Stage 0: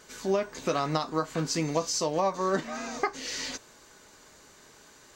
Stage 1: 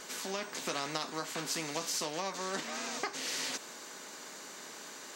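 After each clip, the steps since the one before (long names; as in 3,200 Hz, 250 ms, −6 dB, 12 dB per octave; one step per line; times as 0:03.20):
high-pass filter 200 Hz 24 dB per octave
every bin compressed towards the loudest bin 2 to 1
level −6 dB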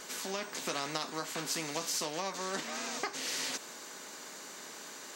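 high-shelf EQ 11,000 Hz +3.5 dB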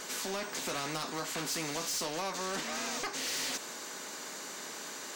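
soft clipping −35 dBFS, distortion −10 dB
level +4.5 dB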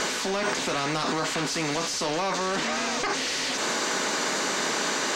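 in parallel at +3 dB: compressor whose output falls as the input rises −42 dBFS, ratio −0.5
on the sum: high-frequency loss of the air 71 metres
level +7.5 dB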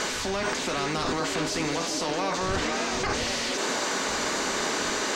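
wind on the microphone 120 Hz −42 dBFS
on a send: echo through a band-pass that steps 523 ms, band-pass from 300 Hz, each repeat 0.7 octaves, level −2 dB
on the sum: level −1.5 dB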